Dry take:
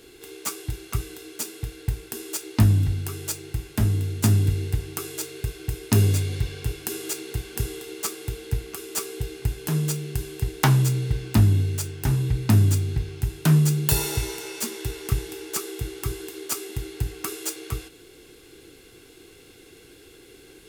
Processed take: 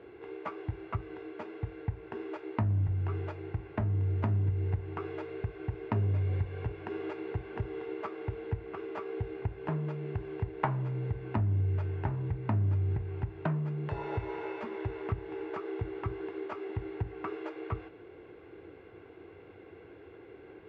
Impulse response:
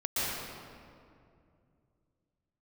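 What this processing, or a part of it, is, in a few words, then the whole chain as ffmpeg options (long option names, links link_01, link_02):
bass amplifier: -af "acompressor=threshold=-28dB:ratio=4,highpass=88,equalizer=frequency=91:width_type=q:width=4:gain=6,equalizer=frequency=140:width_type=q:width=4:gain=-5,equalizer=frequency=250:width_type=q:width=4:gain=-6,equalizer=frequency=620:width_type=q:width=4:gain=7,equalizer=frequency=940:width_type=q:width=4:gain=5,equalizer=frequency=1600:width_type=q:width=4:gain=-3,lowpass=frequency=2000:width=0.5412,lowpass=frequency=2000:width=1.3066"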